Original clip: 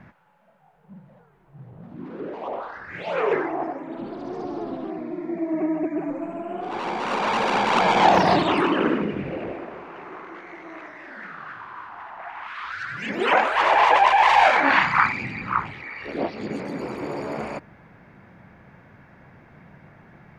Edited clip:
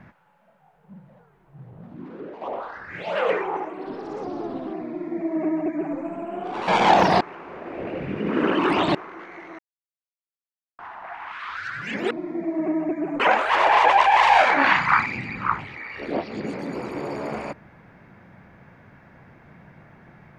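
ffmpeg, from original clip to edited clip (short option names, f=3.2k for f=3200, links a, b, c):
-filter_complex "[0:a]asplit=11[a][b][c][d][e][f][g][h][i][j][k];[a]atrim=end=2.41,asetpts=PTS-STARTPTS,afade=t=out:st=1.82:d=0.59:silence=0.501187[l];[b]atrim=start=2.41:end=3.154,asetpts=PTS-STARTPTS,afade=t=in:d=0.004:c=hsin:silence=0.501187[m];[c]atrim=start=3.15:end=4.4,asetpts=PTS-STARTPTS,asetrate=51156,aresample=44100[n];[d]atrim=start=4.396:end=6.852[o];[e]atrim=start=7.828:end=8.362[p];[f]atrim=start=8.358:end=10.102,asetpts=PTS-STARTPTS,areverse[q];[g]atrim=start=10.098:end=10.74,asetpts=PTS-STARTPTS,afade=t=out:st=0.638:d=0.004:c=hsin[r];[h]atrim=start=10.74:end=11.94,asetpts=PTS-STARTPTS,volume=0[s];[i]atrim=start=11.94:end=13.262,asetpts=PTS-STARTPTS,afade=t=in:d=0.004:c=hsin[t];[j]atrim=start=5.048:end=6.142[u];[k]atrim=start=13.258[v];[l][m]concat=n=2:v=0:a=1[w];[w][n]acrossfade=d=0.004:c1=hsin:c2=hsin[x];[x][o]acrossfade=d=0.004:c1=hsin:c2=hsin[y];[y][p]acrossfade=d=0.004:c1=hsin:c2=hsin[z];[z][q]acrossfade=d=0.004:c1=hsin:c2=hsin[aa];[r][s][t]concat=n=3:v=0:a=1[ab];[aa][ab]acrossfade=d=0.004:c1=hsin:c2=hsin[ac];[ac][u]acrossfade=d=0.004:c1=hsin:c2=hsin[ad];[ad][v]acrossfade=d=0.004:c1=hsin:c2=hsin"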